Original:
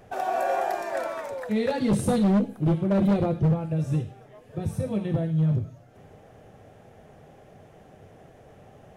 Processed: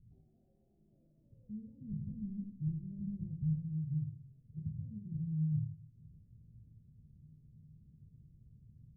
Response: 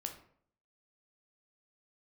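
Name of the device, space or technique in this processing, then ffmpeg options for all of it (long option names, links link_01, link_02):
club heard from the street: -filter_complex "[0:a]alimiter=level_in=2dB:limit=-24dB:level=0:latency=1:release=375,volume=-2dB,lowpass=frequency=170:width=0.5412,lowpass=frequency=170:width=1.3066[link_01];[1:a]atrim=start_sample=2205[link_02];[link_01][link_02]afir=irnorm=-1:irlink=0,volume=-2dB"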